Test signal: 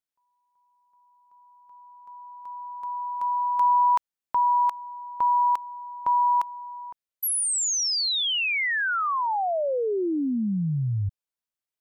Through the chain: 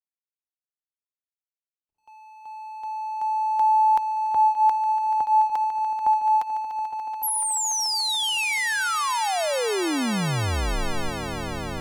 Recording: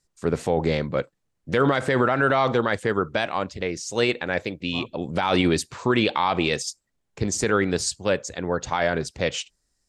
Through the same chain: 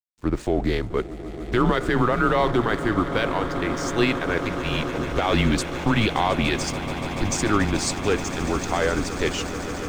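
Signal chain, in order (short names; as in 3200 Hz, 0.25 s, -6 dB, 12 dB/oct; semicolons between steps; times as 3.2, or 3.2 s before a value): swelling echo 0.144 s, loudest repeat 8, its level -16 dB; frequency shift -110 Hz; backlash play -38.5 dBFS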